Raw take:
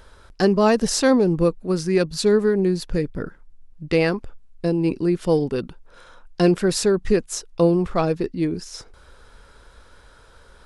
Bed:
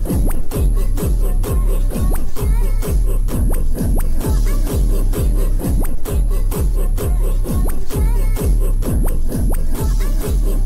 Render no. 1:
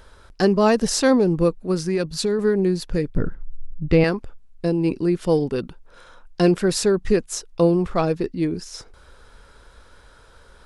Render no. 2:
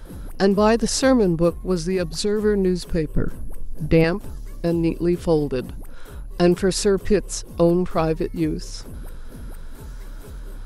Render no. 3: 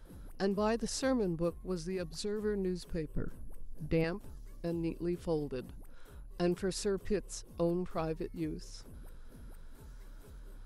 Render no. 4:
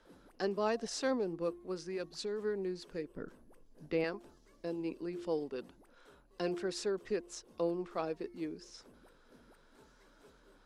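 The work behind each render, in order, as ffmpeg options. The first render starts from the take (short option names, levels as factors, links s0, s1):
-filter_complex "[0:a]asettb=1/sr,asplit=3[s0][s1][s2];[s0]atrim=end=1.744[s3];[s1]atrim=start=1.74:end=2.39,asetpts=PTS-STARTPTS,afade=t=in:d=0.004:c=qsin,afade=t=out:st=0.646:d=0.004:c=qsin,acompressor=threshold=0.141:ratio=6:attack=3.2:release=140:knee=1:detection=peak[s4];[s2]atrim=start=2.386[s5];[s3][s4]acrossfade=d=0.004:c1=hsin:c2=qsin[s6];[s6][s5]acrossfade=d=0.004:c1=qsin:c2=hsin,asettb=1/sr,asplit=3[s7][s8][s9];[s7]atrim=end=3.164[s10];[s8]atrim=start=3.16:end=4.04,asetpts=PTS-STARTPTS,afade=t=in:d=0.004:c=qsin,afade=t=out:st=0.876:d=0.004:c=qsin,aemphasis=mode=reproduction:type=bsi[s11];[s9]atrim=start=4.036[s12];[s10][s11]acrossfade=d=0.004:c1=hsin:c2=qsin[s13];[s13][s12]acrossfade=d=0.004:c1=qsin:c2=hsin"
-filter_complex "[1:a]volume=0.106[s0];[0:a][s0]amix=inputs=2:normalize=0"
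-af "volume=0.178"
-filter_complex "[0:a]acrossover=split=230 7700:gain=0.1 1 0.141[s0][s1][s2];[s0][s1][s2]amix=inputs=3:normalize=0,bandreject=f=347.8:t=h:w=4,bandreject=f=695.6:t=h:w=4"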